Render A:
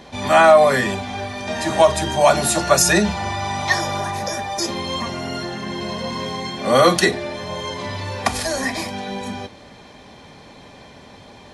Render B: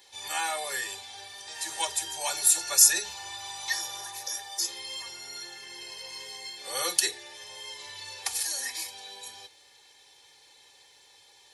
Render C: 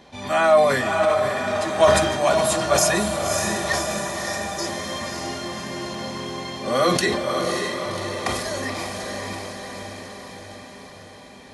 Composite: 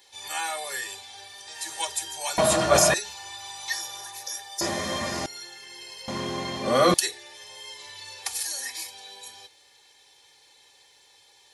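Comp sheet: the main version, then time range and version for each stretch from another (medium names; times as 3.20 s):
B
2.38–2.94 s: from C
4.61–5.26 s: from C
6.08–6.94 s: from C
not used: A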